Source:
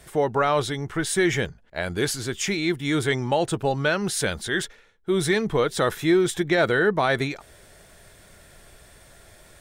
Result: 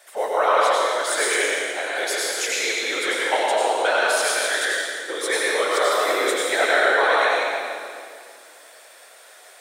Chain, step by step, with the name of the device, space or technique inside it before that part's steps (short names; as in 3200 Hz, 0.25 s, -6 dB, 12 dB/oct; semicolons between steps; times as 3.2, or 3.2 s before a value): whispering ghost (whisperiser; HPF 520 Hz 24 dB/oct; reverb RT60 2.2 s, pre-delay 85 ms, DRR -5 dB)